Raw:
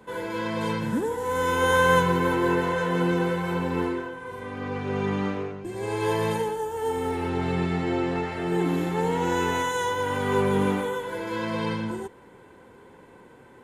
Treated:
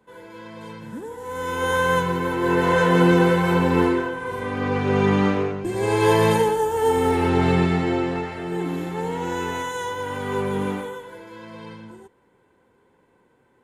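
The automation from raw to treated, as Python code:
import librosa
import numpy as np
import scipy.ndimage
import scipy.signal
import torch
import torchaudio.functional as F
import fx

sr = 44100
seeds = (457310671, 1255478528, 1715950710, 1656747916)

y = fx.gain(x, sr, db=fx.line((0.74, -10.5), (1.68, -1.0), (2.34, -1.0), (2.75, 8.0), (7.49, 8.0), (8.48, -2.0), (10.76, -2.0), (11.34, -11.0)))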